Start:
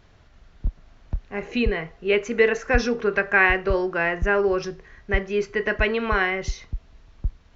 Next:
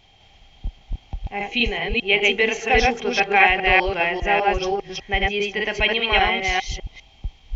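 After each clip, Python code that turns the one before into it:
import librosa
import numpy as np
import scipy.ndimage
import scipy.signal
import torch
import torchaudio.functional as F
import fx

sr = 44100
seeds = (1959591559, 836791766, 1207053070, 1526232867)

y = fx.reverse_delay(x, sr, ms=200, wet_db=0)
y = fx.high_shelf_res(y, sr, hz=1900.0, db=6.5, q=3.0)
y = fx.small_body(y, sr, hz=(790.0, 3200.0), ring_ms=45, db=18)
y = y * librosa.db_to_amplitude(-4.0)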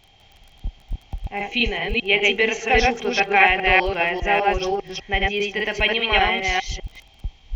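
y = fx.dmg_crackle(x, sr, seeds[0], per_s=22.0, level_db=-35.0)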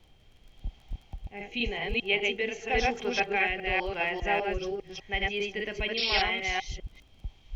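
y = fx.rotary(x, sr, hz=0.9)
y = fx.spec_paint(y, sr, seeds[1], shape='noise', start_s=5.97, length_s=0.25, low_hz=2200.0, high_hz=5600.0, level_db=-23.0)
y = fx.dmg_noise_colour(y, sr, seeds[2], colour='brown', level_db=-51.0)
y = y * librosa.db_to_amplitude(-7.0)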